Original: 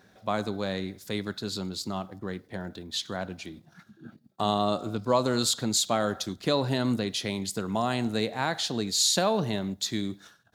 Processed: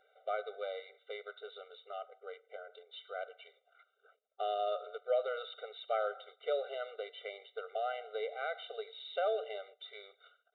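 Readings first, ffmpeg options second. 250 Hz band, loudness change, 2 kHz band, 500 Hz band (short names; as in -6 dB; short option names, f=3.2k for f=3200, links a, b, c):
under -35 dB, -11.0 dB, -9.0 dB, -6.5 dB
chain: -filter_complex "[0:a]aresample=8000,aresample=44100,acrossover=split=2800[a][b];[b]acompressor=threshold=-43dB:ratio=4:attack=1:release=60[c];[a][c]amix=inputs=2:normalize=0,afftfilt=real='re*eq(mod(floor(b*sr/1024/390),2),1)':imag='im*eq(mod(floor(b*sr/1024/390),2),1)':win_size=1024:overlap=0.75,volume=-5.5dB"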